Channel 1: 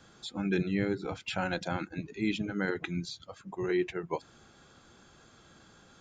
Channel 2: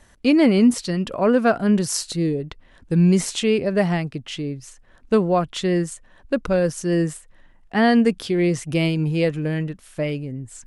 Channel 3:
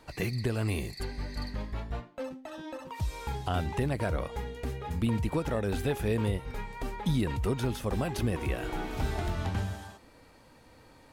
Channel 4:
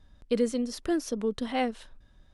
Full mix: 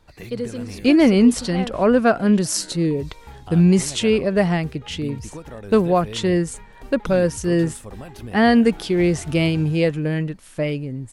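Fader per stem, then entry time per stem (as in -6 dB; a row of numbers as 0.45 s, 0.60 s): -14.5 dB, +1.5 dB, -6.0 dB, -1.5 dB; 0.00 s, 0.60 s, 0.00 s, 0.00 s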